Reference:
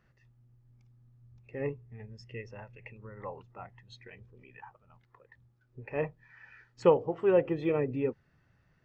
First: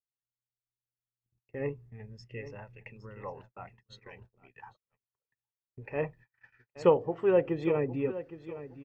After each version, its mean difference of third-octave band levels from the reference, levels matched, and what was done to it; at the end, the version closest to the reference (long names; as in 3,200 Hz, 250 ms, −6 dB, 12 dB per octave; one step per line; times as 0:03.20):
1.5 dB: repeating echo 814 ms, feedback 25%, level −14 dB
noise gate −52 dBFS, range −43 dB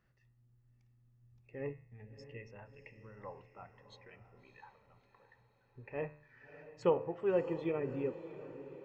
3.0 dB: hum removal 74.59 Hz, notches 39
on a send: feedback delay with all-pass diffusion 638 ms, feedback 51%, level −13.5 dB
on the sum: level −6.5 dB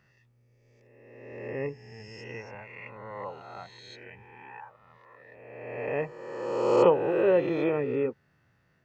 6.5 dB: peak hold with a rise ahead of every peak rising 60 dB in 1.54 s
high-pass filter 140 Hz 6 dB per octave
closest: first